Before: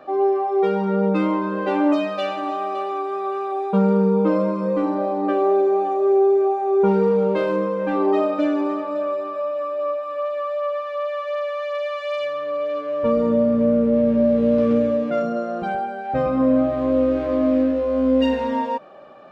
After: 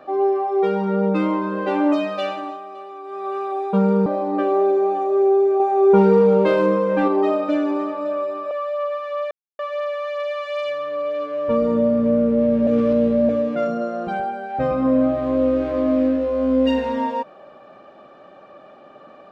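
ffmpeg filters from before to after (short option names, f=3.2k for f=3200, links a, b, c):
-filter_complex "[0:a]asplit=10[a][b][c][d][e][f][g][h][i][j];[a]atrim=end=2.62,asetpts=PTS-STARTPTS,afade=t=out:st=2.28:d=0.34:silence=0.298538[k];[b]atrim=start=2.62:end=3.02,asetpts=PTS-STARTPTS,volume=-10.5dB[l];[c]atrim=start=3.02:end=4.062,asetpts=PTS-STARTPTS,afade=t=in:d=0.34:silence=0.298538[m];[d]atrim=start=4.958:end=6.502[n];[e]atrim=start=6.498:end=7.982,asetpts=PTS-STARTPTS,volume=4dB[o];[f]atrim=start=7.978:end=9.412[p];[g]atrim=start=10.338:end=11.14,asetpts=PTS-STARTPTS,afade=t=out:st=0.798:d=0.004:c=hsin,apad=pad_dur=0.28[q];[h]atrim=start=11.14:end=14.222,asetpts=PTS-STARTPTS,afade=t=in:d=0.004:c=hsin[r];[i]atrim=start=14.218:end=14.842,asetpts=PTS-STARTPTS,areverse[s];[j]atrim=start=14.838[t];[k][l][m]concat=n=3:v=0:a=1[u];[u][n]acrossfade=d=0.004:c1=hsin:c2=hsin[v];[v][o]acrossfade=d=0.004:c1=hsin:c2=hsin[w];[w][p]acrossfade=d=0.004:c1=hsin:c2=hsin[x];[q][r]concat=n=2:v=0:a=1[y];[x][y]acrossfade=d=0.004:c1=hsin:c2=hsin[z];[z][s]acrossfade=d=0.004:c1=hsin:c2=hsin[aa];[aa][t]acrossfade=d=0.004:c1=hsin:c2=hsin"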